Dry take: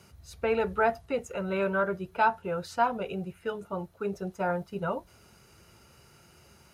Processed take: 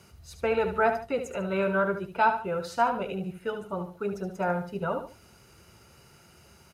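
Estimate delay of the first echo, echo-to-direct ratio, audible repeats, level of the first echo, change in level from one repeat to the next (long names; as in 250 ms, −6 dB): 73 ms, −8.5 dB, 2, −9.0 dB, −9.5 dB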